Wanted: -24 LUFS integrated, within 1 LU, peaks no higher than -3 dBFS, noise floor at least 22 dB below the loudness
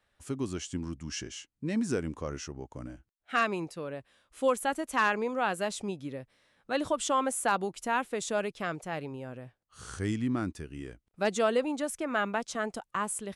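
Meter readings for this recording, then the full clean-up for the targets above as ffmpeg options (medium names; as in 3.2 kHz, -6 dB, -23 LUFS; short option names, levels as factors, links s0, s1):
loudness -32.0 LUFS; peak level -15.5 dBFS; loudness target -24.0 LUFS
-> -af "volume=2.51"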